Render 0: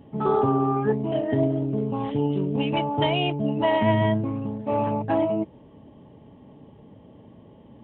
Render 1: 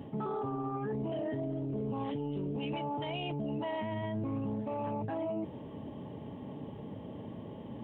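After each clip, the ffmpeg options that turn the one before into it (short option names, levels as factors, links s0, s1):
-af "highpass=74,areverse,acompressor=threshold=0.0316:ratio=6,areverse,alimiter=level_in=3.16:limit=0.0631:level=0:latency=1:release=12,volume=0.316,volume=1.78"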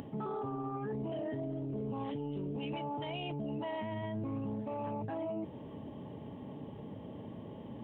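-af "acompressor=mode=upward:threshold=0.01:ratio=2.5,volume=0.75"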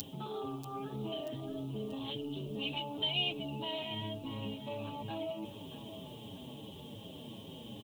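-filter_complex "[0:a]aexciter=amount=12.2:drive=7.7:freq=3000,aecho=1:1:635|1270|1905|2540:0.251|0.111|0.0486|0.0214,asplit=2[s0][s1];[s1]adelay=7,afreqshift=-2.7[s2];[s0][s2]amix=inputs=2:normalize=1"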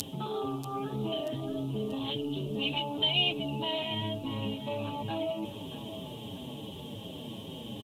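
-af "aresample=32000,aresample=44100,volume=2"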